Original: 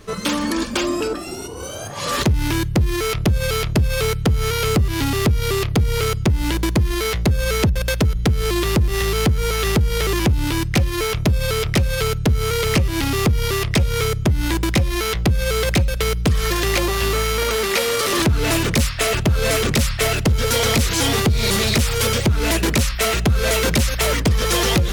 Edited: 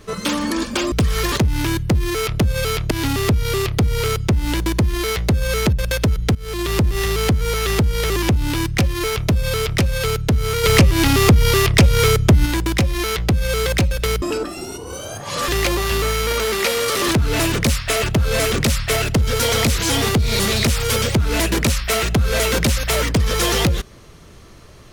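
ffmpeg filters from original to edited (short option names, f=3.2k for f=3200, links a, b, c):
-filter_complex "[0:a]asplit=9[a][b][c][d][e][f][g][h][i];[a]atrim=end=0.922[j];[b]atrim=start=16.188:end=16.592[k];[c]atrim=start=2.178:end=3.772[l];[d]atrim=start=4.878:end=8.32,asetpts=PTS-STARTPTS,afade=t=out:st=3.438:d=0.004:c=hsin:silence=0.141254[m];[e]atrim=start=8.32:end=12.612,asetpts=PTS-STARTPTS,afade=t=in:d=0.41:silence=0.141254[n];[f]atrim=start=12.608:end=14.432,asetpts=PTS-STARTPTS,volume=5.5dB[o];[g]atrim=start=14.428:end=16.192[p];[h]atrim=start=0.918:end=2.182[q];[i]atrim=start=16.588[r];[j][k]acrossfade=d=0.004:c1=hsin:c2=hsin[s];[s][l]acrossfade=d=0.004:c1=hsin:c2=hsin[t];[m][n]concat=n=2:v=0:a=1[u];[t][u]acrossfade=d=0.004:c1=hsin:c2=hsin[v];[v][o]acrossfade=d=0.004:c1=hsin:c2=hsin[w];[w][p]acrossfade=d=0.004:c1=hsin:c2=hsin[x];[x][q]acrossfade=d=0.004:c1=hsin:c2=hsin[y];[y][r]acrossfade=d=0.004:c1=hsin:c2=hsin"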